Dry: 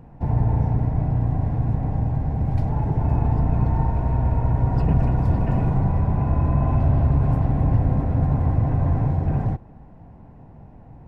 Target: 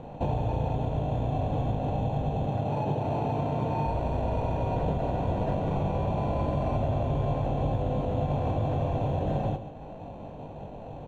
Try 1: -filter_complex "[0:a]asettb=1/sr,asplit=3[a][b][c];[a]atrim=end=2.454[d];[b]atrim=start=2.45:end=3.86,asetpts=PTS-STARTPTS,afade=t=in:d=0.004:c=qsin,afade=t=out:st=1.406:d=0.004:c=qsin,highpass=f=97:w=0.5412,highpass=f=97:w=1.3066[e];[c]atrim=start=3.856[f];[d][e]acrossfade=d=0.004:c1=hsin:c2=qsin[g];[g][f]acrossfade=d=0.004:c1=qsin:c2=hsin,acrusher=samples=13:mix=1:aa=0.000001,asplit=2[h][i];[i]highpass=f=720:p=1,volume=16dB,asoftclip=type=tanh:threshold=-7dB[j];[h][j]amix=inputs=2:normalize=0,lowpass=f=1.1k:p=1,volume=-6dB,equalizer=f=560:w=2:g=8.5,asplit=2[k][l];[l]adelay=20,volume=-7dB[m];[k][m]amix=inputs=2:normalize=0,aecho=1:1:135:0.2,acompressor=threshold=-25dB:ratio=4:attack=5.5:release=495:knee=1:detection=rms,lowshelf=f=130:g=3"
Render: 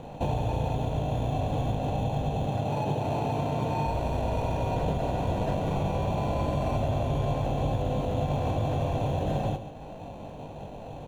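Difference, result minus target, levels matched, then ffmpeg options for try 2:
2000 Hz band +3.5 dB
-filter_complex "[0:a]asettb=1/sr,asplit=3[a][b][c];[a]atrim=end=2.454[d];[b]atrim=start=2.45:end=3.86,asetpts=PTS-STARTPTS,afade=t=in:d=0.004:c=qsin,afade=t=out:st=1.406:d=0.004:c=qsin,highpass=f=97:w=0.5412,highpass=f=97:w=1.3066[e];[c]atrim=start=3.856[f];[d][e]acrossfade=d=0.004:c1=hsin:c2=qsin[g];[g][f]acrossfade=d=0.004:c1=qsin:c2=hsin,acrusher=samples=13:mix=1:aa=0.000001,asplit=2[h][i];[i]highpass=f=720:p=1,volume=16dB,asoftclip=type=tanh:threshold=-7dB[j];[h][j]amix=inputs=2:normalize=0,lowpass=f=1.1k:p=1,volume=-6dB,lowpass=f=1.8k:p=1,equalizer=f=560:w=2:g=8.5,asplit=2[k][l];[l]adelay=20,volume=-7dB[m];[k][m]amix=inputs=2:normalize=0,aecho=1:1:135:0.2,acompressor=threshold=-25dB:ratio=4:attack=5.5:release=495:knee=1:detection=rms,lowshelf=f=130:g=3"

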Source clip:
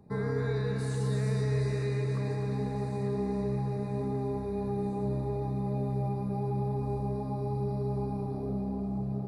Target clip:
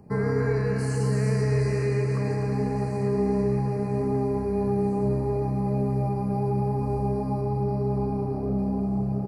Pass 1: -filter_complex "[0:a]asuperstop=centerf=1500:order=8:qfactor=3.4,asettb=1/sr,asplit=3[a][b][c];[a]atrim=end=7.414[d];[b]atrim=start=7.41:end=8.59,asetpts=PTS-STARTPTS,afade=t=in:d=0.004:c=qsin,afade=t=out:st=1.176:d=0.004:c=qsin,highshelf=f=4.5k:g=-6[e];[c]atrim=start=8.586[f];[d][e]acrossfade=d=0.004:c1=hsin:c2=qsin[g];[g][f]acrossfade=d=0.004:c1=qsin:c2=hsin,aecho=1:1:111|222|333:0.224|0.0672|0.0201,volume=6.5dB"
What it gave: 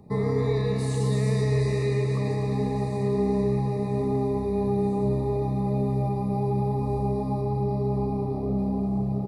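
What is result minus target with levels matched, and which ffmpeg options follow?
4000 Hz band +4.5 dB
-filter_complex "[0:a]asuperstop=centerf=3600:order=8:qfactor=3.4,asettb=1/sr,asplit=3[a][b][c];[a]atrim=end=7.414[d];[b]atrim=start=7.41:end=8.59,asetpts=PTS-STARTPTS,afade=t=in:d=0.004:c=qsin,afade=t=out:st=1.176:d=0.004:c=qsin,highshelf=f=4.5k:g=-6[e];[c]atrim=start=8.586[f];[d][e]acrossfade=d=0.004:c1=hsin:c2=qsin[g];[g][f]acrossfade=d=0.004:c1=qsin:c2=hsin,aecho=1:1:111|222|333:0.224|0.0672|0.0201,volume=6.5dB"

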